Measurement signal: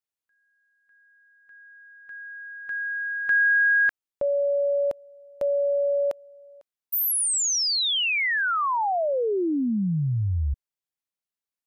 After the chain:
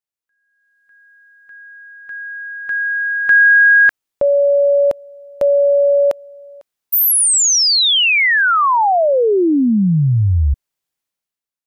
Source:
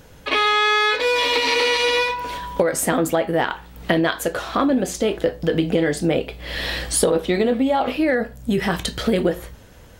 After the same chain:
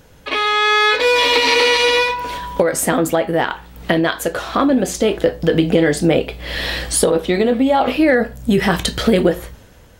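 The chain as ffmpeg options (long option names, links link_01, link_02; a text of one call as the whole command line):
ffmpeg -i in.wav -af "dynaudnorm=framelen=120:gausssize=11:maxgain=12dB,volume=-1dB" out.wav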